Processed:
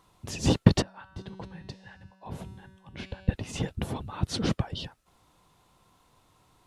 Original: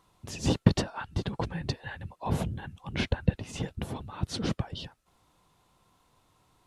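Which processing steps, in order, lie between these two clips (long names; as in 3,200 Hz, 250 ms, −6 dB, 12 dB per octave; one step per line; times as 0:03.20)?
0:00.82–0:03.29: tuned comb filter 190 Hz, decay 1.5 s, mix 80%
level +3 dB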